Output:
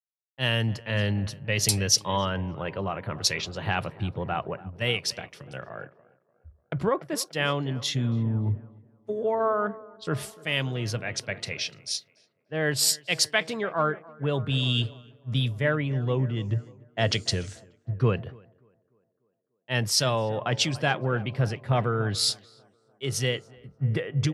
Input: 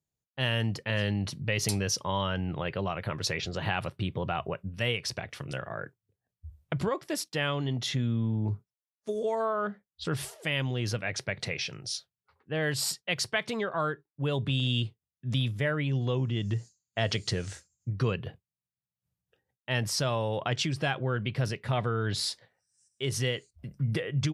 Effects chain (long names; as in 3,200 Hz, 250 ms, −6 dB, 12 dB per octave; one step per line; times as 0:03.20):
on a send: tape delay 294 ms, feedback 84%, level −14 dB, low-pass 1,800 Hz
on the sum: multiband upward and downward expander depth 100%
level +2.5 dB